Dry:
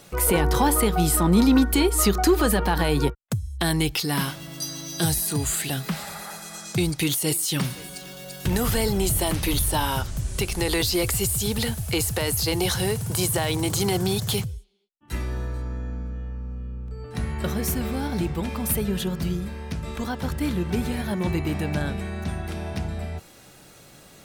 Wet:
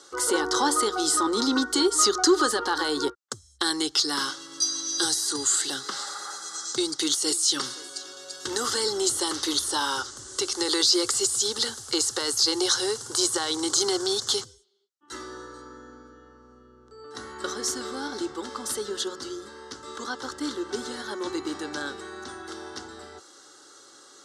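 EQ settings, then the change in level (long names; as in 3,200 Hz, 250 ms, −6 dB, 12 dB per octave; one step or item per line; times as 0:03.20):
dynamic equaliser 5,100 Hz, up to +4 dB, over −41 dBFS, Q 0.74
loudspeaker in its box 460–7,500 Hz, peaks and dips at 480 Hz −7 dB, 950 Hz −9 dB, 1,800 Hz −5 dB
phaser with its sweep stopped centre 660 Hz, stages 6
+6.5 dB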